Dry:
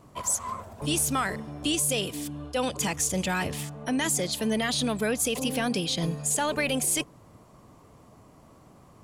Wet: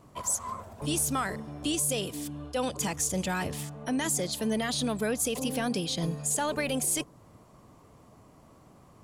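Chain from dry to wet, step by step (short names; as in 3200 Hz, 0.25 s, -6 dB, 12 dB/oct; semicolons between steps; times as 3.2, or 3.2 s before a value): dynamic EQ 2500 Hz, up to -4 dB, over -44 dBFS, Q 1.2; gain -2 dB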